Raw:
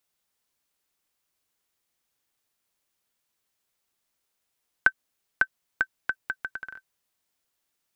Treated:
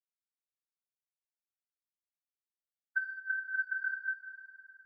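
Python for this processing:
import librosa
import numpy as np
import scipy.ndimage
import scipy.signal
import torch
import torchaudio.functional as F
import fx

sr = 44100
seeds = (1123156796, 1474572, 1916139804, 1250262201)

p1 = scipy.signal.sosfilt(scipy.signal.butter(4, 240.0, 'highpass', fs=sr, output='sos'), x)
p2 = fx.transient(p1, sr, attack_db=1, sustain_db=-3)
p3 = fx.stretch_vocoder(p2, sr, factor=0.61)
p4 = (np.mod(10.0 ** (17.0 / 20.0) * p3 + 1.0, 2.0) - 1.0) / 10.0 ** (17.0 / 20.0)
p5 = p3 + (p4 * librosa.db_to_amplitude(-5.0))
p6 = fx.rotary_switch(p5, sr, hz=5.5, then_hz=0.6, switch_at_s=2.45)
p7 = np.clip(p6, -10.0 ** (-22.5 / 20.0), 10.0 ** (-22.5 / 20.0))
p8 = fx.echo_swell(p7, sr, ms=103, loudest=5, wet_db=-12)
p9 = fx.room_shoebox(p8, sr, seeds[0], volume_m3=4000.0, walls='mixed', distance_m=4.7)
p10 = fx.spectral_expand(p9, sr, expansion=2.5)
y = p10 * librosa.db_to_amplitude(-6.5)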